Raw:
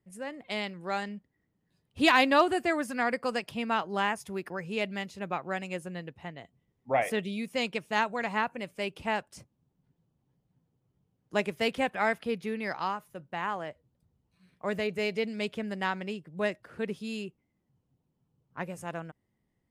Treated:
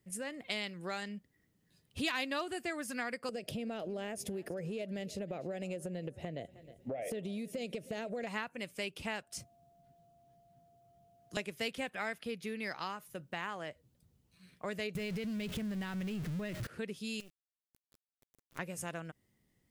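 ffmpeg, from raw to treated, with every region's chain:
-filter_complex "[0:a]asettb=1/sr,asplit=3[a][b][c];[a]atrim=end=3.294[d];[b]atrim=start=3.29:end=8.27,asetpts=PTS-STARTPTS,afade=t=in:d=0.004:c=qsin,afade=t=out:st=4.976:d=0.004:c=qsin,lowshelf=f=780:t=q:w=3:g=8.5,acompressor=threshold=-29dB:ratio=5:attack=3.2:release=140:knee=1:detection=peak,aecho=1:1:312|624|936:0.0794|0.0342|0.0147,atrim=end_sample=219618[e];[c]atrim=start=8.266[f];[d][e]acrossfade=d=0.004:c1=hsin:c2=qsin[g];[g][f]acrossfade=d=0.004:c1=qsin:c2=hsin,asettb=1/sr,asplit=3[h][i][j];[h]atrim=end=9.234[k];[i]atrim=start=9.23:end=11.37,asetpts=PTS-STARTPTS,afade=t=in:d=0.004:c=qsin,afade=t=out:st=2.136:d=0.004:c=qsin,equalizer=f=1.3k:w=6.4:g=3.5,acrossover=split=180|3000[l][m][n];[m]acompressor=threshold=-60dB:ratio=2.5:attack=3.2:release=140:knee=2.83:detection=peak[o];[l][o][n]amix=inputs=3:normalize=0,aeval=exprs='val(0)+0.000631*sin(2*PI*690*n/s)':c=same[p];[j]atrim=start=11.366[q];[k][p]acrossfade=d=0.004:c1=hsin:c2=qsin[r];[r][q]acrossfade=d=0.004:c1=qsin:c2=hsin,asettb=1/sr,asplit=3[s][t][u];[s]atrim=end=14.954[v];[t]atrim=start=14.95:end=16.67,asetpts=PTS-STARTPTS,afade=t=in:d=0.004:c=qsin,afade=t=out:st=1.716:d=0.004:c=qsin,aeval=exprs='val(0)+0.5*0.0188*sgn(val(0))':c=same,acompressor=threshold=-33dB:ratio=2:attack=3.2:release=140:knee=1:detection=peak,bass=f=250:g=12,treble=f=4k:g=-5[w];[u]atrim=start=16.666[x];[v][w]acrossfade=d=0.004:c1=hsin:c2=qsin[y];[y][x]acrossfade=d=0.004:c1=qsin:c2=hsin,asettb=1/sr,asplit=3[z][aa][ab];[z]atrim=end=17.204[ac];[aa]atrim=start=17.2:end=18.59,asetpts=PTS-STARTPTS,afade=t=in:d=0.004:c=qsin,afade=t=out:st=1.386:d=0.004:c=qsin,equalizer=f=260:w=5.2:g=-3,acompressor=threshold=-47dB:ratio=8:attack=3.2:release=140:knee=1:detection=peak,acrusher=bits=8:dc=4:mix=0:aa=0.000001[ad];[ab]atrim=start=18.586[ae];[ac][ad]acrossfade=d=0.004:c1=hsin:c2=qsin[af];[af][ae]acrossfade=d=0.004:c1=qsin:c2=hsin,equalizer=f=890:w=2:g=-5,acompressor=threshold=-42dB:ratio=3,highshelf=f=2.7k:g=8.5,volume=2dB"

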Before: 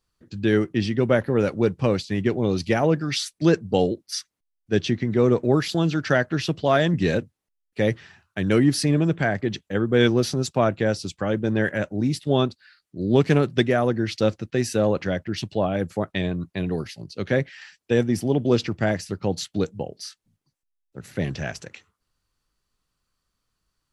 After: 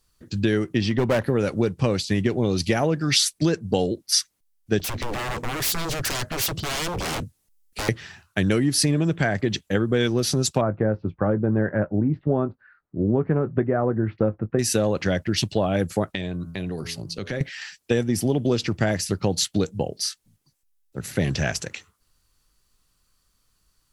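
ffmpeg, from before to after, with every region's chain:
-filter_complex "[0:a]asettb=1/sr,asplit=3[a][b][c];[a]atrim=end=0.814[d];[b]atrim=start=0.81:end=1.22,asetpts=PTS-STARTPTS,afade=t=in:d=0.004:c=qsin,afade=t=out:st=0.406:d=0.004:c=qsin,lowpass=5.8k,equalizer=f=960:w=1.9:g=7,asoftclip=type=hard:threshold=-15.5dB[e];[c]atrim=start=1.216[f];[d][e]acrossfade=d=0.004:c1=hsin:c2=qsin[g];[g][f]acrossfade=d=0.004:c1=qsin:c2=hsin,asettb=1/sr,asplit=3[h][i][j];[h]atrim=end=4.794[k];[i]atrim=start=4.79:end=7.89,asetpts=PTS-STARTPTS,afade=t=in:d=0.004:c=qsin,afade=t=out:st=3.096:d=0.004:c=qsin,bass=f=250:g=6,treble=f=4k:g=5,acompressor=threshold=-22dB:ratio=3:attack=3.2:release=140:knee=1:detection=peak,aeval=exprs='0.0335*(abs(mod(val(0)/0.0335+3,4)-2)-1)':c=same[l];[j]atrim=start=7.886[m];[k][l]acrossfade=d=0.004:c1=hsin:c2=qsin[n];[n][m]acrossfade=d=0.004:c1=qsin:c2=hsin,asettb=1/sr,asplit=3[o][p][q];[o]atrim=end=10.614[r];[p]atrim=start=10.61:end=14.59,asetpts=PTS-STARTPTS,afade=t=in:d=0.004:c=qsin,afade=t=out:st=3.976:d=0.004:c=qsin,lowpass=f=1.4k:w=0.5412,lowpass=f=1.4k:w=1.3066,asplit=2[s][t];[t]adelay=19,volume=-12.5dB[u];[s][u]amix=inputs=2:normalize=0,atrim=end_sample=175518[v];[q]atrim=start=14.586[w];[r][v]acrossfade=d=0.004:c1=hsin:c2=qsin[x];[x][w]acrossfade=d=0.004:c1=qsin:c2=hsin,asettb=1/sr,asplit=3[y][z][aa];[y]atrim=end=16.154[ab];[z]atrim=start=16.15:end=17.41,asetpts=PTS-STARTPTS,afade=t=in:d=0.004:c=qsin,afade=t=out:st=1.256:d=0.004:c=qsin,bandreject=f=83.82:t=h:w=4,bandreject=f=167.64:t=h:w=4,bandreject=f=251.46:t=h:w=4,bandreject=f=335.28:t=h:w=4,bandreject=f=419.1:t=h:w=4,bandreject=f=502.92:t=h:w=4,bandreject=f=586.74:t=h:w=4,bandreject=f=670.56:t=h:w=4,bandreject=f=754.38:t=h:w=4,bandreject=f=838.2:t=h:w=4,bandreject=f=922.02:t=h:w=4,bandreject=f=1.00584k:t=h:w=4,bandreject=f=1.08966k:t=h:w=4,bandreject=f=1.17348k:t=h:w=4,bandreject=f=1.2573k:t=h:w=4,bandreject=f=1.34112k:t=h:w=4,bandreject=f=1.42494k:t=h:w=4,bandreject=f=1.50876k:t=h:w=4,acompressor=threshold=-35dB:ratio=3:attack=3.2:release=140:knee=1:detection=peak[ac];[aa]atrim=start=17.406[ad];[ab][ac]acrossfade=d=0.004:c1=hsin:c2=qsin[ae];[ae][ad]acrossfade=d=0.004:c1=qsin:c2=hsin,lowshelf=f=68:g=6.5,acompressor=threshold=-23dB:ratio=6,aemphasis=mode=production:type=cd,volume=5.5dB"

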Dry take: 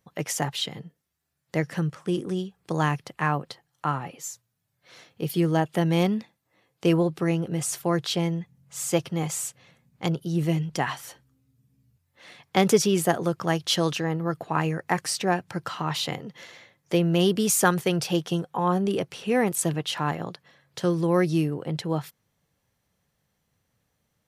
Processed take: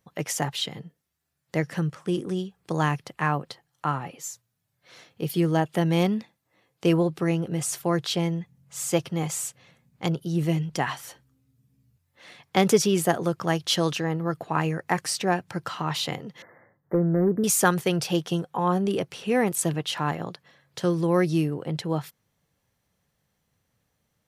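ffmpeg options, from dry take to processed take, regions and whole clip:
-filter_complex "[0:a]asettb=1/sr,asplit=3[a][b][c];[a]atrim=end=16.424[d];[b]atrim=start=16.42:end=17.44,asetpts=PTS-STARTPTS,afade=t=in:d=0.004:c=qsin,afade=t=out:st=1.016:d=0.004:c=qsin,highshelf=f=2.2k:g=-9,asoftclip=type=hard:threshold=-14.5dB,asuperstop=centerf=5300:order=20:qfactor=0.53[e];[c]atrim=start=17.436[f];[d][e]acrossfade=d=0.004:c1=hsin:c2=qsin[g];[g][f]acrossfade=d=0.004:c1=qsin:c2=hsin"

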